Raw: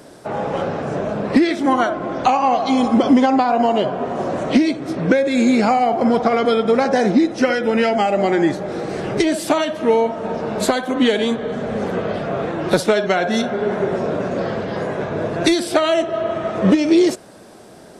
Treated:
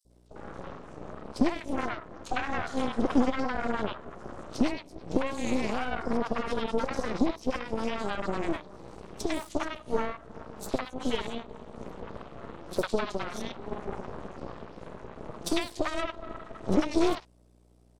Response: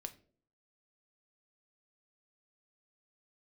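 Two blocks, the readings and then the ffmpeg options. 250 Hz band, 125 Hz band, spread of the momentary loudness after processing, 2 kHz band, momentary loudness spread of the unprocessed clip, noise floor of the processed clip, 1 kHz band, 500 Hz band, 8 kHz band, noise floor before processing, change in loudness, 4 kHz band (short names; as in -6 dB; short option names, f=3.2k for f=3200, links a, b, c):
-14.0 dB, -13.5 dB, 15 LU, -12.5 dB, 8 LU, -59 dBFS, -15.5 dB, -15.5 dB, -12.5 dB, -42 dBFS, -14.0 dB, -13.5 dB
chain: -filter_complex "[0:a]highpass=140,equalizer=f=1.6k:w=2.5:g=-11.5,aeval=exprs='val(0)+0.0178*(sin(2*PI*60*n/s)+sin(2*PI*2*60*n/s)/2+sin(2*PI*3*60*n/s)/3+sin(2*PI*4*60*n/s)/4+sin(2*PI*5*60*n/s)/5)':c=same,aeval=exprs='0.794*(cos(1*acos(clip(val(0)/0.794,-1,1)))-cos(1*PI/2))+0.251*(cos(3*acos(clip(val(0)/0.794,-1,1)))-cos(3*PI/2))+0.0708*(cos(4*acos(clip(val(0)/0.794,-1,1)))-cos(4*PI/2))':c=same,asoftclip=type=tanh:threshold=-11dB,acrossover=split=810|4200[a][b][c];[a]adelay=50[d];[b]adelay=100[e];[d][e][c]amix=inputs=3:normalize=0"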